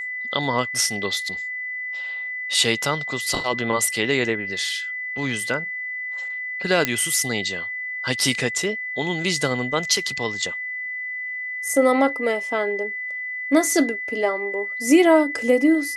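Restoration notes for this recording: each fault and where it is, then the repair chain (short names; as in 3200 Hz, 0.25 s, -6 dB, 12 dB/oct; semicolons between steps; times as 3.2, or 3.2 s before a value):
tone 2000 Hz -27 dBFS
6.85 pop -3 dBFS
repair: de-click; notch 2000 Hz, Q 30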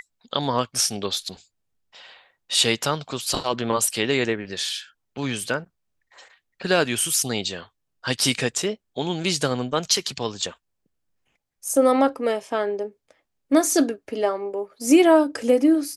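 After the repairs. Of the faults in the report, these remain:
none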